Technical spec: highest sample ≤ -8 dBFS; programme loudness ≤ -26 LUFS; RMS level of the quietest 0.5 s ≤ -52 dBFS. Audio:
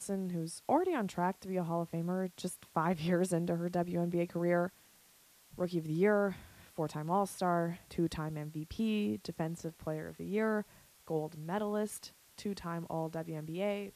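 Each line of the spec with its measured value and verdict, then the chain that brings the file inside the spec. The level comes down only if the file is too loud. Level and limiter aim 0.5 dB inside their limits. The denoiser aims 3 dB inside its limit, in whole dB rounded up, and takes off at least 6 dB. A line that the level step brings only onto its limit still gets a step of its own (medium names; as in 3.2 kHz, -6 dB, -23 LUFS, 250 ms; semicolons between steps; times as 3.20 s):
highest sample -17.0 dBFS: pass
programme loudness -35.5 LUFS: pass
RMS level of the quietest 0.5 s -64 dBFS: pass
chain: none needed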